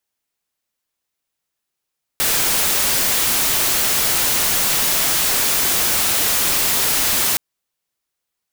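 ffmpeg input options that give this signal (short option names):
-f lavfi -i "anoisesrc=c=white:a=0.231:d=5.17:r=44100:seed=1"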